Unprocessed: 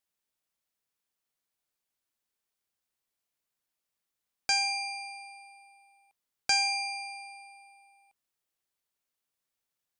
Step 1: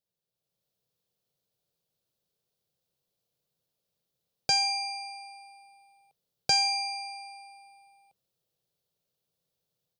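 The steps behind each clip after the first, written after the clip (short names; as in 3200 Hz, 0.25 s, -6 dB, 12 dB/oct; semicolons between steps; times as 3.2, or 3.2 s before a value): bell 170 Hz +11.5 dB 1.3 oct; AGC gain up to 7.5 dB; graphic EQ 125/250/500/1000/2000/4000/8000 Hz +7/-9/+11/-5/-9/+5/-5 dB; gain -4.5 dB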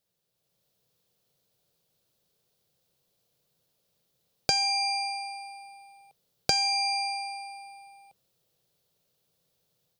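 compressor 6:1, threshold -31 dBFS, peak gain reduction 11 dB; gain +8.5 dB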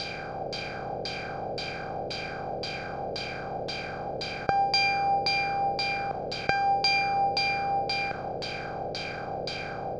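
per-bin compression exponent 0.2; LFO low-pass saw down 1.9 Hz 490–4000 Hz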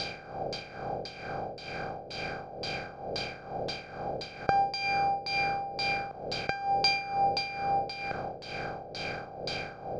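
tremolo 2.2 Hz, depth 73%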